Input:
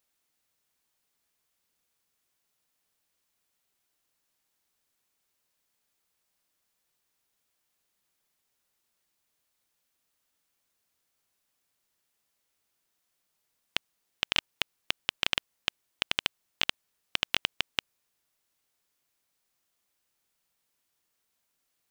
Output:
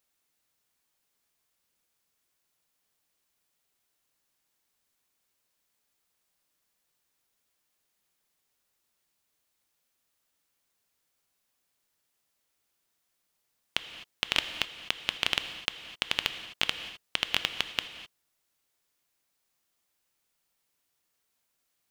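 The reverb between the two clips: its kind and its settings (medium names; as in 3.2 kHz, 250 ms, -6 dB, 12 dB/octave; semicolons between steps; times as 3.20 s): gated-style reverb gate 280 ms flat, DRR 9 dB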